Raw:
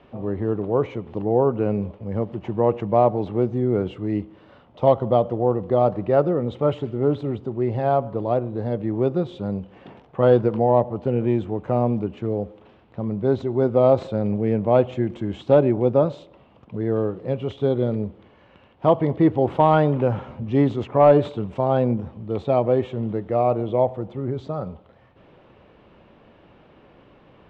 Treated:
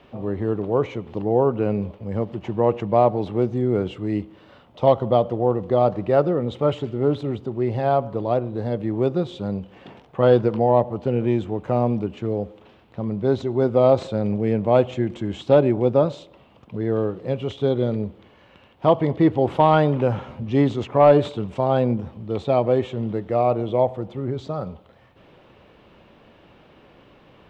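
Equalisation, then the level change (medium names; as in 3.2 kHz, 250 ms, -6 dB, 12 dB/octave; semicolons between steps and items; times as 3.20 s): treble shelf 3.5 kHz +10.5 dB; 0.0 dB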